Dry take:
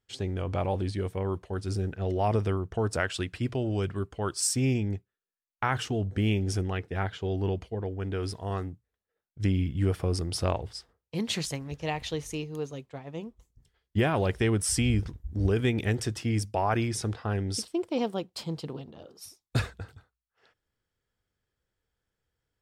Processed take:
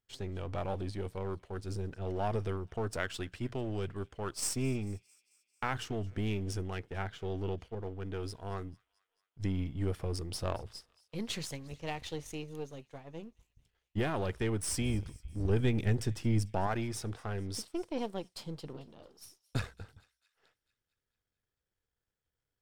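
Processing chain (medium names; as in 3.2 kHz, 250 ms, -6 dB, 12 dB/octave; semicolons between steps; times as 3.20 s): partial rectifier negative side -7 dB; 15.49–16.67 s: bass shelf 270 Hz +8 dB; feedback echo behind a high-pass 222 ms, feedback 59%, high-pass 2.1 kHz, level -22 dB; trim -4.5 dB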